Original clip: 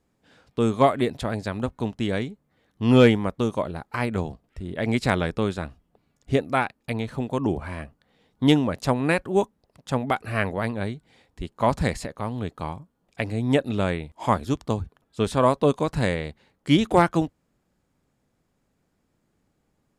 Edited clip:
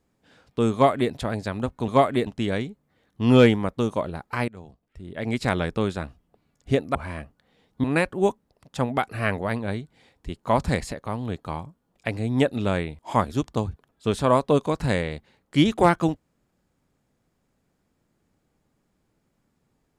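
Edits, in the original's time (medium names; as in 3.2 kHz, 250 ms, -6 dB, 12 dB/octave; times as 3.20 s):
0.73–1.12 s: copy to 1.88 s
4.09–5.34 s: fade in, from -21.5 dB
6.56–7.57 s: delete
8.46–8.97 s: delete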